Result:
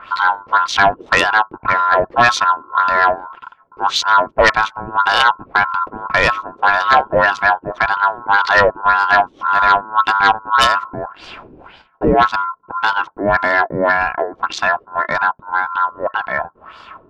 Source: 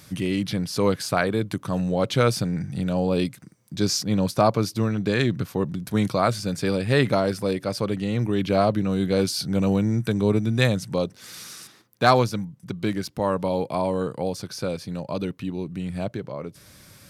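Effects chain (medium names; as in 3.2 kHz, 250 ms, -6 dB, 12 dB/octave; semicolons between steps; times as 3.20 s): local Wiener filter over 9 samples; in parallel at -1 dB: compression, threshold -30 dBFS, peak gain reduction 17 dB; on the sum: ring modulator 1.2 kHz; LFO low-pass sine 1.8 Hz 330–4900 Hz; sine folder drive 5 dB, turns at -3.5 dBFS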